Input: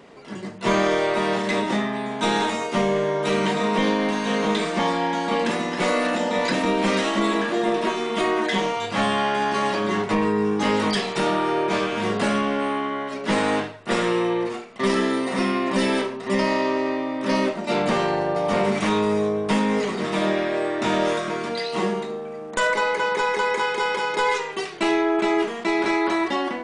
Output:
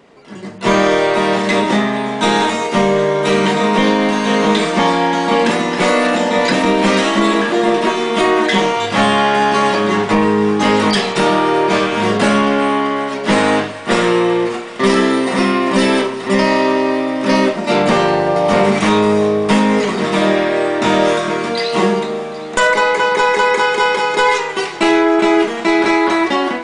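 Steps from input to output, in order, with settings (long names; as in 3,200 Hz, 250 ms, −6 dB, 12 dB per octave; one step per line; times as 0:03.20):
automatic gain control gain up to 11.5 dB
feedback echo with a high-pass in the loop 384 ms, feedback 84%, level −18 dB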